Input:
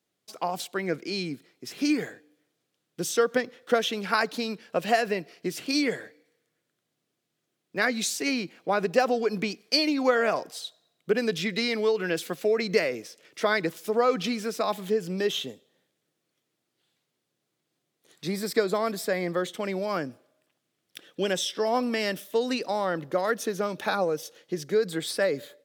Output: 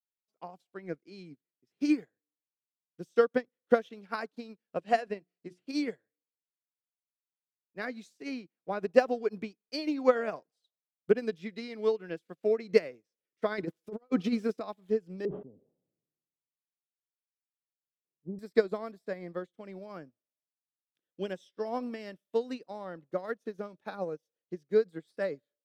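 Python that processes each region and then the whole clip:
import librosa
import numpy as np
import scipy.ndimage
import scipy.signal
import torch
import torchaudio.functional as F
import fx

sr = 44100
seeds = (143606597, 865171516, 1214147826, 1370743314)

y = fx.chain(x, sr, fx.lowpass(hz=11000.0, slope=24),
    fx.hum_notches(base_hz=60, count=6), at=(4.77, 5.64))
y = fx.chain(y, sr, fx.over_compress(threshold_db=-28.0, ratio=-0.5),
    fx.dynamic_eq(hz=320.0, q=1.1, threshold_db=-42.0, ratio=4.0, max_db=5), at=(13.58, 14.61))
y = fx.chain(y, sr, fx.bessel_lowpass(hz=580.0, order=6),
    fx.sustainer(db_per_s=44.0), at=(15.25, 18.39))
y = fx.tilt_eq(y, sr, slope=-2.0)
y = fx.upward_expand(y, sr, threshold_db=-42.0, expansion=2.5)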